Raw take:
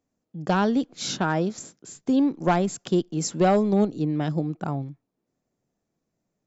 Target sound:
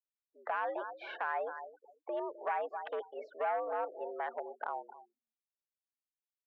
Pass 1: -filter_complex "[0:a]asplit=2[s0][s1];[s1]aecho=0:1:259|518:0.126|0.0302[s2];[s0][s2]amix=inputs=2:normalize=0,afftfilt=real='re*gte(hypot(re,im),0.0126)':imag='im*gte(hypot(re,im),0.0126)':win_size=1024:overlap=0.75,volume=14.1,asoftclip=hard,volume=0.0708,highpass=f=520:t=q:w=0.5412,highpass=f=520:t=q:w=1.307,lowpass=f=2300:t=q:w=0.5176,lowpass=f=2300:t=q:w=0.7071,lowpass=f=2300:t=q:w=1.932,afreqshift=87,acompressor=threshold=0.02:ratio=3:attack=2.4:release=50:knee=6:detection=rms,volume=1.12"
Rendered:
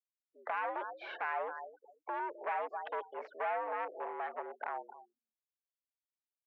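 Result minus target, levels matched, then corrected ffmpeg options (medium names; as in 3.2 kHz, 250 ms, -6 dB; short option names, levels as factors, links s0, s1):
overload inside the chain: distortion +13 dB
-filter_complex "[0:a]asplit=2[s0][s1];[s1]aecho=0:1:259|518:0.126|0.0302[s2];[s0][s2]amix=inputs=2:normalize=0,afftfilt=real='re*gte(hypot(re,im),0.0126)':imag='im*gte(hypot(re,im),0.0126)':win_size=1024:overlap=0.75,volume=5.31,asoftclip=hard,volume=0.188,highpass=f=520:t=q:w=0.5412,highpass=f=520:t=q:w=1.307,lowpass=f=2300:t=q:w=0.5176,lowpass=f=2300:t=q:w=0.7071,lowpass=f=2300:t=q:w=1.932,afreqshift=87,acompressor=threshold=0.02:ratio=3:attack=2.4:release=50:knee=6:detection=rms,volume=1.12"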